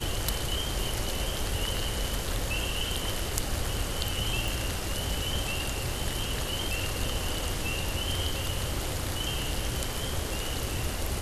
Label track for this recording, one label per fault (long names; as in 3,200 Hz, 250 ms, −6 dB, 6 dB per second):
4.480000	4.480000	click